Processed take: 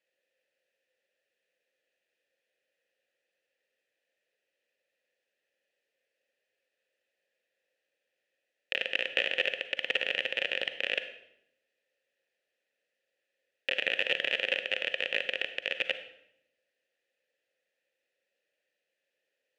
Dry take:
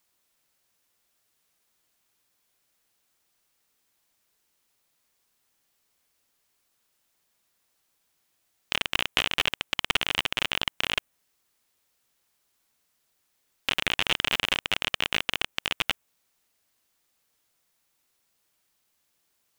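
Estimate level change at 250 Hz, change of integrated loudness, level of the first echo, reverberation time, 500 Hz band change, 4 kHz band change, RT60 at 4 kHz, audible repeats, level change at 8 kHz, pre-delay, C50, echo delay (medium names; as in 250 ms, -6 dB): -10.5 dB, -3.5 dB, no echo, 0.80 s, +3.5 dB, -6.0 dB, 0.65 s, no echo, under -15 dB, 38 ms, 11.0 dB, no echo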